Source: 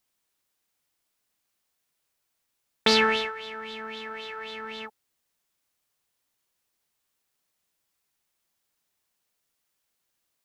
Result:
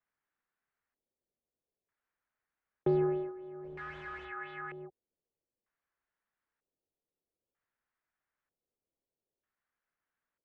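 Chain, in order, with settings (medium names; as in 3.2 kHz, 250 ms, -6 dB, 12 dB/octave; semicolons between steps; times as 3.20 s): 3.64–4.25 s: one-bit comparator; LFO low-pass square 0.53 Hz 540–1700 Hz; frequency shift -69 Hz; trim -8.5 dB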